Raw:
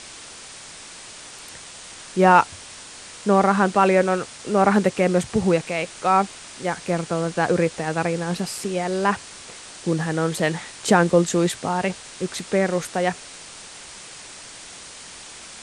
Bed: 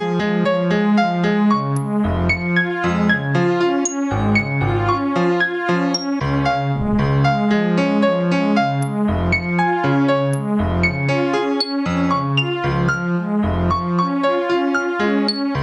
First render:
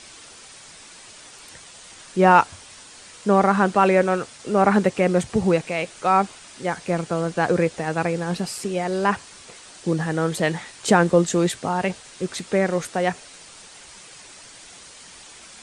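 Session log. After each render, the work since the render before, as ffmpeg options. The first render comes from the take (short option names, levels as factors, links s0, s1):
-af "afftdn=nr=6:nf=-41"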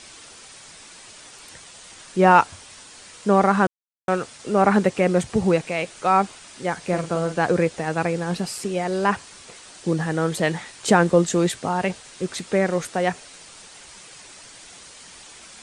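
-filter_complex "[0:a]asettb=1/sr,asplit=3[s0][s1][s2];[s0]atrim=end=6.794[s3];[s1]atrim=start=6.79:end=7.38,asetpts=PTS-STARTPTS,afade=t=in:d=0.004:c=qsin,afade=t=out:st=0.586:d=0.004:c=qsin,asplit=2[s4][s5];[s5]adelay=44,volume=0.398[s6];[s4][s6]amix=inputs=2:normalize=0,atrim=end_sample=26019[s7];[s2]atrim=start=7.376[s8];[s3][s7]acrossfade=d=0.004:c1=hsin:c2=qsin[s9];[s9][s8]acrossfade=d=0.004:c1=qsin:c2=hsin,asplit=3[s10][s11][s12];[s10]atrim=end=3.67,asetpts=PTS-STARTPTS,afade=t=out:st=3.666:d=0.004:c=hsin[s13];[s11]atrim=start=3.67:end=4.08,asetpts=PTS-STARTPTS,volume=0[s14];[s12]atrim=start=4.08,asetpts=PTS-STARTPTS,afade=t=in:d=0.004:c=hsin[s15];[s13][s14][s15]concat=n=3:v=0:a=1"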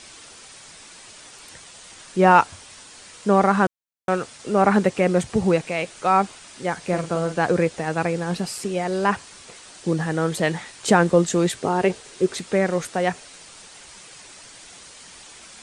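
-filter_complex "[0:a]asettb=1/sr,asplit=3[s0][s1][s2];[s0]atrim=end=11.584[s3];[s1]atrim=start=11.58:end=12.38,asetpts=PTS-STARTPTS,afade=t=in:d=0.004:c=qsin,afade=t=out:st=0.796:d=0.004:c=qsin,equalizer=f=400:w=2.6:g=10.5[s4];[s2]atrim=start=12.376[s5];[s3][s4]acrossfade=d=0.004:c1=hsin:c2=qsin[s6];[s6][s5]acrossfade=d=0.004:c1=qsin:c2=hsin"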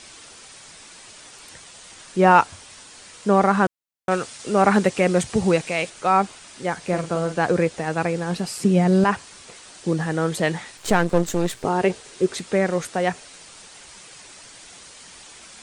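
-filter_complex "[0:a]asettb=1/sr,asplit=3[s0][s1][s2];[s0]atrim=end=4.114[s3];[s1]atrim=start=4.11:end=5.9,asetpts=PTS-STARTPTS,afade=t=in:d=0.004:c=qsin,afade=t=out:st=1.786:d=0.004:c=qsin,highshelf=f=2300:g=5.5[s4];[s2]atrim=start=5.896[s5];[s3][s4]acrossfade=d=0.004:c1=hsin:c2=qsin[s6];[s6][s5]acrossfade=d=0.004:c1=qsin:c2=hsin,asettb=1/sr,asplit=3[s7][s8][s9];[s7]atrim=end=8.604[s10];[s8]atrim=start=8.6:end=9.04,asetpts=PTS-STARTPTS,afade=t=in:d=0.004:c=qsin,afade=t=out:st=0.436:d=0.004:c=qsin,equalizer=f=170:t=o:w=1.5:g=14[s11];[s9]atrim=start=9.036[s12];[s10][s11]acrossfade=d=0.004:c1=hsin:c2=qsin[s13];[s13][s12]acrossfade=d=0.004:c1=qsin:c2=hsin,asettb=1/sr,asplit=3[s14][s15][s16];[s14]atrim=end=10.774[s17];[s15]atrim=start=10.77:end=11.65,asetpts=PTS-STARTPTS,afade=t=in:d=0.004:c=qsin,afade=t=out:st=0.876:d=0.004:c=qsin,aeval=exprs='if(lt(val(0),0),0.251*val(0),val(0))':c=same[s18];[s16]atrim=start=11.646[s19];[s17][s18]acrossfade=d=0.004:c1=hsin:c2=qsin[s20];[s20][s19]acrossfade=d=0.004:c1=qsin:c2=hsin"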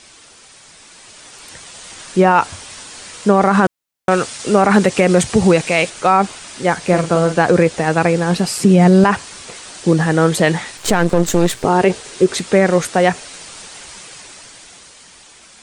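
-af "alimiter=limit=0.266:level=0:latency=1:release=50,dynaudnorm=f=140:g=21:m=3.98"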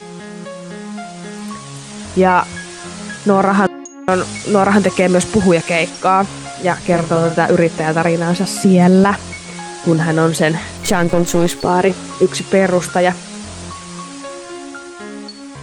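-filter_complex "[1:a]volume=0.224[s0];[0:a][s0]amix=inputs=2:normalize=0"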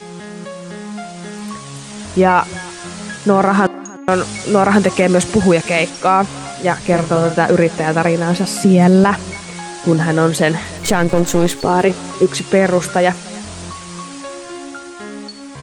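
-af "aecho=1:1:300:0.0708"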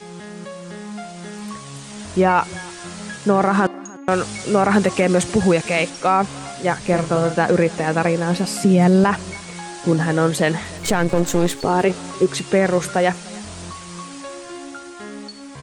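-af "volume=0.631"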